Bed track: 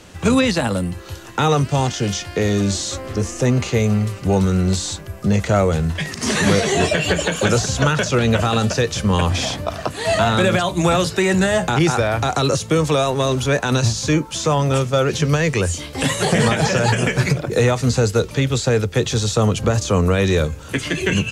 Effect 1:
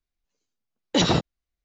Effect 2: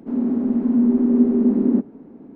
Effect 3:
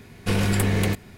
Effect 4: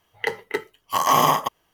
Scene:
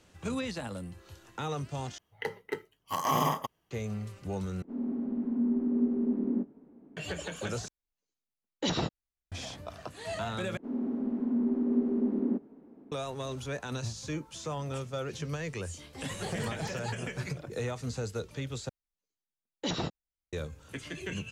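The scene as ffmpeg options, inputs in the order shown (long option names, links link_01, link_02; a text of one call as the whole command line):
ffmpeg -i bed.wav -i cue0.wav -i cue1.wav -i cue2.wav -i cue3.wav -filter_complex "[2:a]asplit=2[link_01][link_02];[1:a]asplit=2[link_03][link_04];[0:a]volume=-18.5dB[link_05];[4:a]equalizer=frequency=130:width=0.42:gain=9.5[link_06];[link_01]asplit=2[link_07][link_08];[link_08]adelay=21,volume=-11dB[link_09];[link_07][link_09]amix=inputs=2:normalize=0[link_10];[link_02]bass=frequency=250:gain=-5,treble=frequency=4000:gain=3[link_11];[3:a]acompressor=threshold=-23dB:ratio=6:attack=3.2:release=140:knee=1:detection=peak[link_12];[link_05]asplit=6[link_13][link_14][link_15][link_16][link_17][link_18];[link_13]atrim=end=1.984[link_19];[link_06]atrim=end=1.73,asetpts=PTS-STARTPTS,volume=-12dB[link_20];[link_14]atrim=start=3.706:end=4.624[link_21];[link_10]atrim=end=2.35,asetpts=PTS-STARTPTS,volume=-13.5dB[link_22];[link_15]atrim=start=6.966:end=7.684[link_23];[link_03]atrim=end=1.64,asetpts=PTS-STARTPTS,volume=-10dB[link_24];[link_16]atrim=start=9.316:end=10.574[link_25];[link_11]atrim=end=2.35,asetpts=PTS-STARTPTS,volume=-9.5dB[link_26];[link_17]atrim=start=12.916:end=18.694[link_27];[link_04]atrim=end=1.64,asetpts=PTS-STARTPTS,volume=-12.5dB[link_28];[link_18]atrim=start=20.326[link_29];[link_12]atrim=end=1.17,asetpts=PTS-STARTPTS,volume=-17.5dB,afade=type=in:duration=0.004:curve=hsin,afade=type=out:start_time=1.166:duration=0.004:curve=hsin,adelay=15840[link_30];[link_19][link_20]acrossfade=duration=0.004:curve1=hsin:curve2=hsin[link_31];[link_31][link_21]acrossfade=duration=0.004:curve1=hsin:curve2=hsin[link_32];[link_32][link_22]acrossfade=duration=0.004:curve1=hsin:curve2=hsin[link_33];[link_33][link_23]acrossfade=duration=0.004:curve1=hsin:curve2=hsin[link_34];[link_34][link_24]acrossfade=duration=0.004:curve1=hsin:curve2=hsin[link_35];[link_35][link_25]acrossfade=duration=0.004:curve1=hsin:curve2=hsin[link_36];[link_36][link_26]acrossfade=duration=0.004:curve1=hsin:curve2=hsin[link_37];[link_37][link_27]acrossfade=duration=0.004:curve1=hsin:curve2=hsin[link_38];[link_38][link_28]acrossfade=duration=0.004:curve1=hsin:curve2=hsin[link_39];[link_39][link_29]acrossfade=duration=0.004:curve1=hsin:curve2=hsin[link_40];[link_40][link_30]amix=inputs=2:normalize=0" out.wav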